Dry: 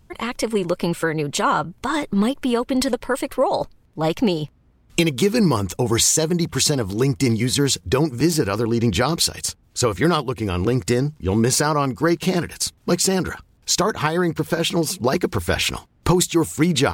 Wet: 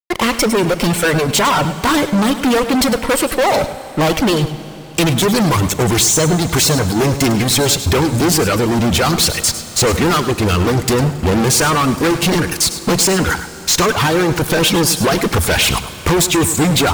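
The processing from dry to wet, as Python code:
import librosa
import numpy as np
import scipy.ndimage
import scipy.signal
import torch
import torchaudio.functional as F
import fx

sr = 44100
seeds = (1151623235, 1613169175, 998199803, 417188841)

y = fx.fuzz(x, sr, gain_db=32.0, gate_db=-38.0)
y = fx.dereverb_blind(y, sr, rt60_s=0.8)
y = y + 10.0 ** (-12.0 / 20.0) * np.pad(y, (int(103 * sr / 1000.0), 0))[:len(y)]
y = fx.rev_schroeder(y, sr, rt60_s=3.9, comb_ms=30, drr_db=13.5)
y = y * 10.0 ** (2.0 / 20.0)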